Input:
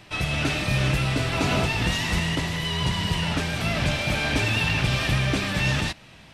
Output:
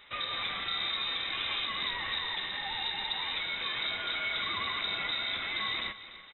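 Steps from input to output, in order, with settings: bell 1600 Hz +11 dB 0.45 oct; compressor 2:1, threshold -25 dBFS, peak gain reduction 5 dB; feedback echo 0.293 s, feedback 45%, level -15.5 dB; inverted band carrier 3800 Hz; gain -8.5 dB

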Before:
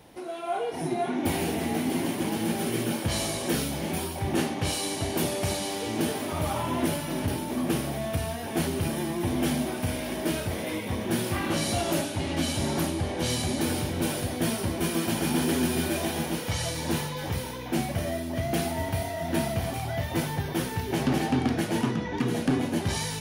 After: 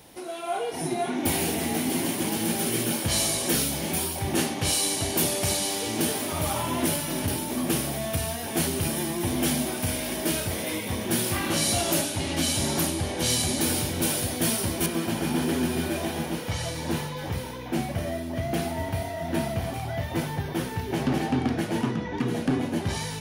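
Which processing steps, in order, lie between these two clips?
high shelf 3600 Hz +9.5 dB, from 14.86 s -3.5 dB

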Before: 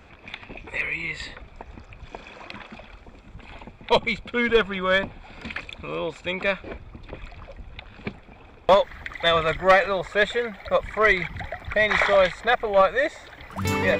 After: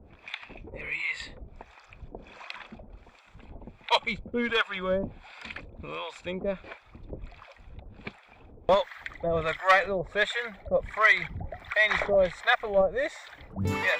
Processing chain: harmonic tremolo 1.4 Hz, depth 100%, crossover 680 Hz

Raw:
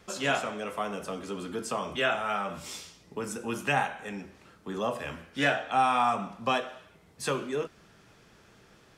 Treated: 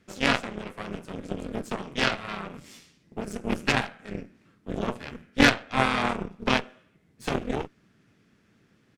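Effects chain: ten-band EQ 125 Hz +5 dB, 250 Hz +12 dB, 1000 Hz -4 dB, 2000 Hz +6 dB; harmoniser -3 st -5 dB; added harmonics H 3 -11 dB, 4 -17 dB, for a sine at -8.5 dBFS; gain +4 dB

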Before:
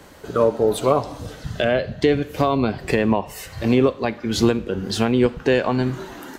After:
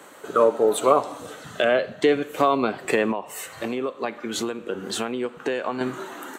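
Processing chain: thirty-one-band EQ 1250 Hz +6 dB, 5000 Hz -10 dB, 8000 Hz +6 dB; 3.11–5.81 compressor 6:1, threshold -21 dBFS, peak gain reduction 10 dB; HPF 300 Hz 12 dB/oct

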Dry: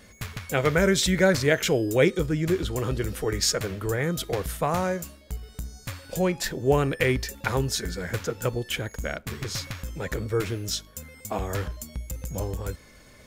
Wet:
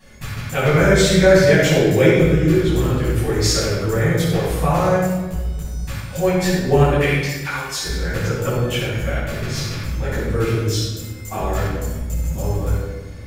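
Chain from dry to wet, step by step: 6.95–7.84 HPF 1100 Hz 12 dB/oct; shoebox room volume 910 m³, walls mixed, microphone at 9 m; gain -8 dB

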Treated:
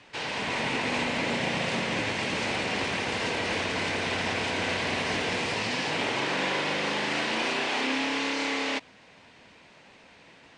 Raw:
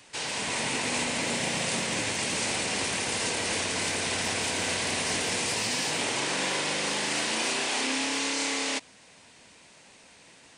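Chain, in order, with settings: LPF 3300 Hz 12 dB/oct; gain +2.5 dB

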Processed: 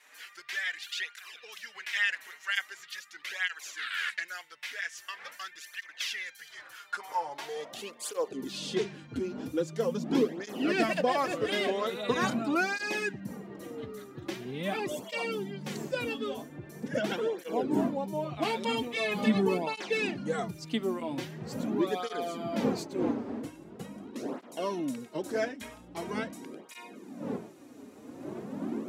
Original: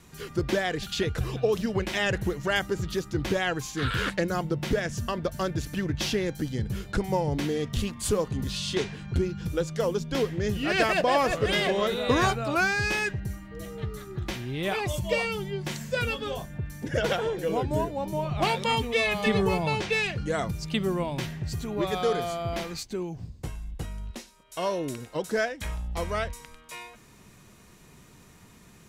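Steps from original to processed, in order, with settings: wind noise 410 Hz -38 dBFS; high-pass sweep 1900 Hz -> 240 Hz, 6.39–8.84; tape flanging out of phase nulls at 0.43 Hz, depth 6.2 ms; gain -3 dB

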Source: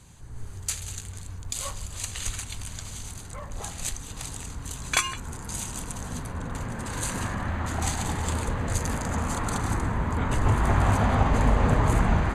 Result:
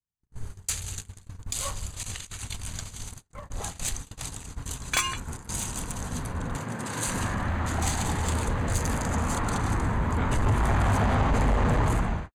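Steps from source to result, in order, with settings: ending faded out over 0.53 s; 6.56–7.08 HPF 110 Hz 24 dB/oct; gate -35 dBFS, range -49 dB; 2.03–3.23 negative-ratio compressor -37 dBFS, ratio -0.5; 9.39–9.82 high shelf 6900 Hz -6.5 dB; soft clip -19.5 dBFS, distortion -12 dB; gain +2 dB

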